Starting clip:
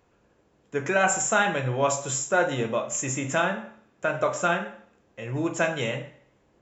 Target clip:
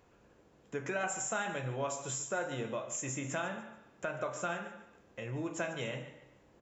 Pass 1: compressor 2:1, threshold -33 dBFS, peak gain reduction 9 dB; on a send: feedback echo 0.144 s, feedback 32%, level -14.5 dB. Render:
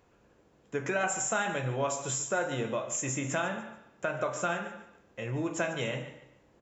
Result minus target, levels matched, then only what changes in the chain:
compressor: peak gain reduction -5 dB
change: compressor 2:1, threshold -43.5 dBFS, peak gain reduction 14.5 dB

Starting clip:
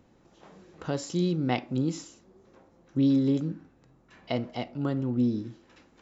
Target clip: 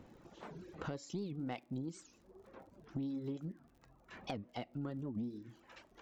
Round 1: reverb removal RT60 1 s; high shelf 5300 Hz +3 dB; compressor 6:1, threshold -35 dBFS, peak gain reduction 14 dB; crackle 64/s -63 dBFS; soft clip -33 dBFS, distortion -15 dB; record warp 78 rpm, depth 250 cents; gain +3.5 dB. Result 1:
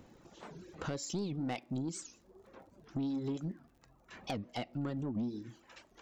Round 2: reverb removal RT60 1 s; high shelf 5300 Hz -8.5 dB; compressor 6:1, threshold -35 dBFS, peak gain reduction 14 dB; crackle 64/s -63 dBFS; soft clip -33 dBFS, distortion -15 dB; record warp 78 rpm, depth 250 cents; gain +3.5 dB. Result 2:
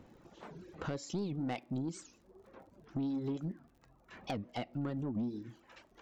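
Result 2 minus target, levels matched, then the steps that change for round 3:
compressor: peak gain reduction -6 dB
change: compressor 6:1, threshold -42 dBFS, peak gain reduction 20 dB

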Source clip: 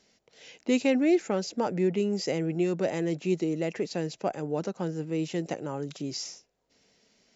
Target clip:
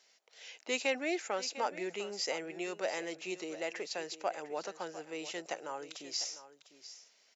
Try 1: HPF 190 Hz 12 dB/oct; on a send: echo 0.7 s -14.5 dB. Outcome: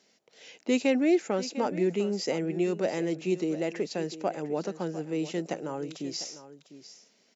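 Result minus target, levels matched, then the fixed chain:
250 Hz band +7.5 dB
HPF 760 Hz 12 dB/oct; on a send: echo 0.7 s -14.5 dB

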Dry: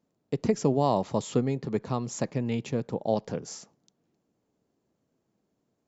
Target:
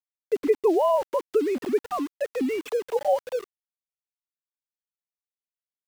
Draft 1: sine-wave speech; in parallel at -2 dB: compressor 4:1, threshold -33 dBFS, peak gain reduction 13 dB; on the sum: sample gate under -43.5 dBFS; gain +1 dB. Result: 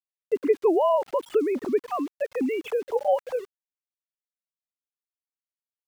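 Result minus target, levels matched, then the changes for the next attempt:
sample gate: distortion -7 dB
change: sample gate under -36.5 dBFS

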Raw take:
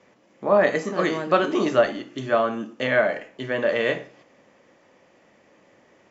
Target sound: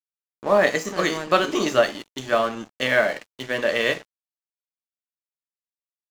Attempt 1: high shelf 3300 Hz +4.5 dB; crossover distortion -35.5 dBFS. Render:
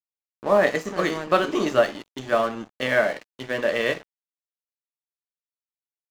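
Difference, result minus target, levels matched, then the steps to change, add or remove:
8000 Hz band -5.5 dB
change: high shelf 3300 Hz +14.5 dB

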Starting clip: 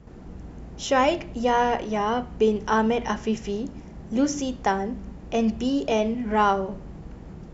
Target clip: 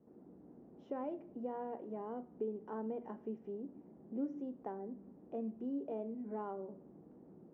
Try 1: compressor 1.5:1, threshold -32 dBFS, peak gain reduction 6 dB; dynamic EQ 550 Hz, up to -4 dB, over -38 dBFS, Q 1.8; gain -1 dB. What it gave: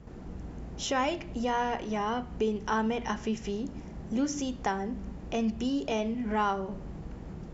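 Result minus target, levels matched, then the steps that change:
500 Hz band -2.5 dB
add after compressor: ladder band-pass 370 Hz, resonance 25%

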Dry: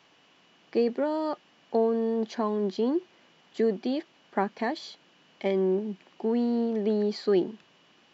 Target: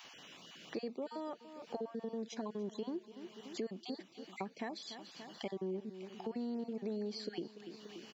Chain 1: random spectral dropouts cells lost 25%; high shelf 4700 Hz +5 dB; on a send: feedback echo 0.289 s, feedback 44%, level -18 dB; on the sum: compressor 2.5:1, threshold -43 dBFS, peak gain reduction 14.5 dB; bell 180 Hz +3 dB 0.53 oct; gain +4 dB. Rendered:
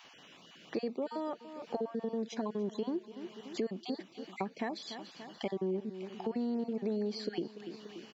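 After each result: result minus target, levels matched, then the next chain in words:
compressor: peak gain reduction -5.5 dB; 8000 Hz band -5.0 dB
random spectral dropouts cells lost 25%; high shelf 4700 Hz +5 dB; on a send: feedback echo 0.289 s, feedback 44%, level -18 dB; on the sum: compressor 2.5:1, threshold -52 dBFS, peak gain reduction 20 dB; bell 180 Hz +3 dB 0.53 oct; gain +4 dB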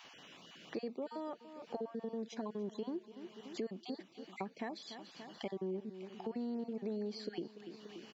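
8000 Hz band -4.0 dB
random spectral dropouts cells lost 25%; high shelf 4700 Hz +12 dB; on a send: feedback echo 0.289 s, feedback 44%, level -18 dB; on the sum: compressor 2.5:1, threshold -52 dBFS, peak gain reduction 20 dB; bell 180 Hz +3 dB 0.53 oct; gain +4 dB

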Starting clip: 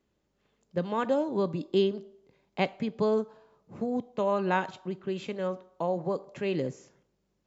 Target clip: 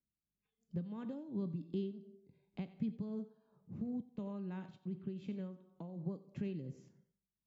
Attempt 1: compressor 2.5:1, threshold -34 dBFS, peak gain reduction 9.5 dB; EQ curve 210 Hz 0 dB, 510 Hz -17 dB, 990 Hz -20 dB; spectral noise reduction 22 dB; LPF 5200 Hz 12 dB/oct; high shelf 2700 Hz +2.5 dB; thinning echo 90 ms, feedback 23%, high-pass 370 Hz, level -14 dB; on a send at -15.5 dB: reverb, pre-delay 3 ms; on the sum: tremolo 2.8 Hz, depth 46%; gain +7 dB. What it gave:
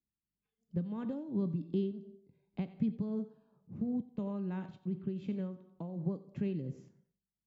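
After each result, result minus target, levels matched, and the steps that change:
compressor: peak gain reduction -5.5 dB; 4000 Hz band -3.5 dB
change: compressor 2.5:1, threshold -43.5 dBFS, peak gain reduction 15.5 dB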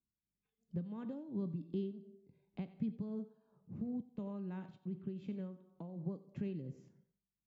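4000 Hz band -3.5 dB
change: high shelf 2700 Hz +8.5 dB

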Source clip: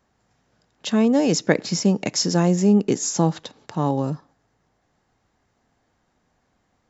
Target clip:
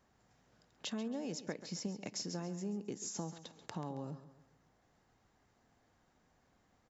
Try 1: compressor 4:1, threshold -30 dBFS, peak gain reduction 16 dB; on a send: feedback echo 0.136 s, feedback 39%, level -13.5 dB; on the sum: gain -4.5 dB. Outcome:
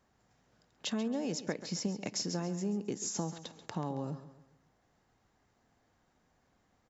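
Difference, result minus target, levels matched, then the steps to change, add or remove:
compressor: peak gain reduction -5.5 dB
change: compressor 4:1, threshold -37.5 dBFS, peak gain reduction 21.5 dB

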